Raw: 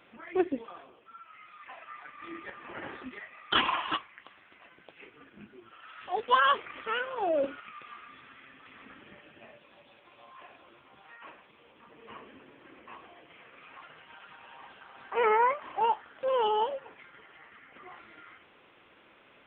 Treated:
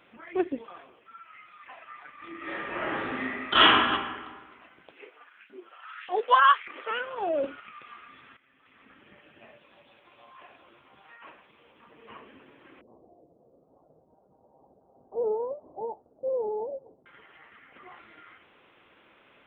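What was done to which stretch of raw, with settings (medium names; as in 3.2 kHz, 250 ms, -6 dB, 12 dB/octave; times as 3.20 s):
0.71–1.41 s: peaking EQ 2 kHz +5 dB
2.36–3.62 s: reverb throw, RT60 1.5 s, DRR -10.5 dB
4.91–6.91 s: LFO high-pass saw up 1.7 Hz 260–2300 Hz
8.37–9.49 s: fade in, from -15.5 dB
12.81–17.06 s: steep low-pass 690 Hz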